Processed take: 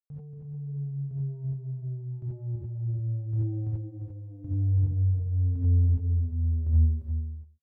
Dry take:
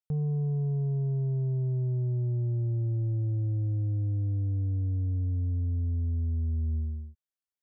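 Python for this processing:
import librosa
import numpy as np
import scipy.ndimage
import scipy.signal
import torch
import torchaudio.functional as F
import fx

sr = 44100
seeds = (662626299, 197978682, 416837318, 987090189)

y = scipy.signal.medfilt(x, 41)
y = fx.highpass(y, sr, hz=46.0, slope=24, at=(2.56, 4.83))
y = fx.dereverb_blind(y, sr, rt60_s=2.0)
y = fx.peak_eq(y, sr, hz=140.0, db=11.5, octaves=0.6)
y = fx.over_compress(y, sr, threshold_db=-33.0, ratio=-1.0)
y = fx.chopper(y, sr, hz=0.9, depth_pct=60, duty_pct=30)
y = y + 10.0 ** (-8.0 / 20.0) * np.pad(y, (int(349 * sr / 1000.0), 0))[:len(y)]
y = fx.rev_gated(y, sr, seeds[0], gate_ms=110, shape='rising', drr_db=-7.0)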